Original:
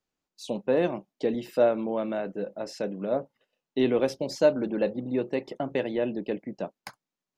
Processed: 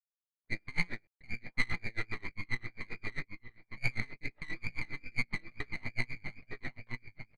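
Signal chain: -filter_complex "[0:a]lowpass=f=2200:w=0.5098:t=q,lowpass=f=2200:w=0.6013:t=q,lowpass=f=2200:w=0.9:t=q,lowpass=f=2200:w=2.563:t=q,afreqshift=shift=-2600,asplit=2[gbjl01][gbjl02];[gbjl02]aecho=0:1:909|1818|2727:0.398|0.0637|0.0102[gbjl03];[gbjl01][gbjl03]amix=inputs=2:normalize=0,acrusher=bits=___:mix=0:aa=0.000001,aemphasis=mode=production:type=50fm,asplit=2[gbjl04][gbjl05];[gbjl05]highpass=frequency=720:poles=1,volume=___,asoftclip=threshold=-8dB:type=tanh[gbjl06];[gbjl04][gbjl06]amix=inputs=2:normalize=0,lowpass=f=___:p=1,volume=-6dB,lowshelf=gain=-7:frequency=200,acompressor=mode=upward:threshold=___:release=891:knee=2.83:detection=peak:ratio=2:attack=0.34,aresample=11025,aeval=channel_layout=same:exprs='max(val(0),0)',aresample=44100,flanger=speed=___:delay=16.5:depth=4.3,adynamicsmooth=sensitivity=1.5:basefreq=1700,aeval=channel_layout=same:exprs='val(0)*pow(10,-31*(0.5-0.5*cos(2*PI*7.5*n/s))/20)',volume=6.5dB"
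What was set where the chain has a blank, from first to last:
10, 10dB, 1100, -38dB, 2.3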